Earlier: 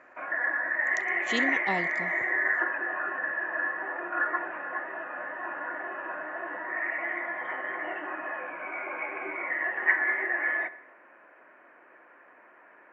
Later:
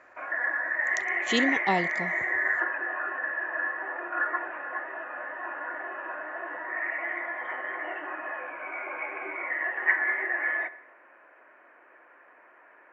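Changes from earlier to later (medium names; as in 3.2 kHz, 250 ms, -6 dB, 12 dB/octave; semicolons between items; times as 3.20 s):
speech +5.0 dB; background: add peaking EQ 180 Hz -8.5 dB 1.2 oct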